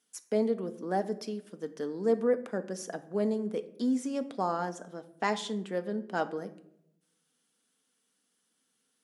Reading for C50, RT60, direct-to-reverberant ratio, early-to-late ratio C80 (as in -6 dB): 15.5 dB, 0.75 s, 8.5 dB, 18.5 dB